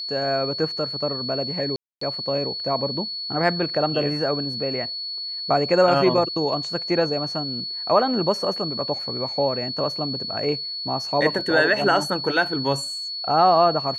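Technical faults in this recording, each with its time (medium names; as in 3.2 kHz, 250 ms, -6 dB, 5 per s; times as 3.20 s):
whine 4.4 kHz -28 dBFS
1.76–2.01 s: dropout 254 ms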